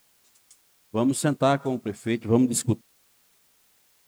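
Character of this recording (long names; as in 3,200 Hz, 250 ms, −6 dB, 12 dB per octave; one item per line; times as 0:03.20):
a quantiser's noise floor 10 bits, dither triangular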